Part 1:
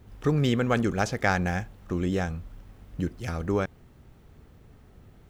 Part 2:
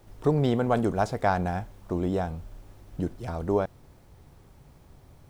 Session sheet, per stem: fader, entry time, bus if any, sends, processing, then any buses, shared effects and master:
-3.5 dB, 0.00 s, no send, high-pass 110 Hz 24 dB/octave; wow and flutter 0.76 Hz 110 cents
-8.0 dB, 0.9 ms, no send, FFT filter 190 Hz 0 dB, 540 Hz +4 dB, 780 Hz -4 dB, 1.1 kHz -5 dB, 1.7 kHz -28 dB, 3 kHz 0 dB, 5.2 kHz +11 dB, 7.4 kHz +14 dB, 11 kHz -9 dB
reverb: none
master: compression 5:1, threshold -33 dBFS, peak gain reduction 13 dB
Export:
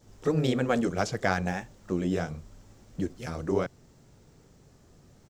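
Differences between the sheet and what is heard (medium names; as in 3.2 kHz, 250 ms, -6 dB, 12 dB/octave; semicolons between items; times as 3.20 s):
stem 2: polarity flipped; master: missing compression 5:1, threshold -33 dBFS, peak gain reduction 13 dB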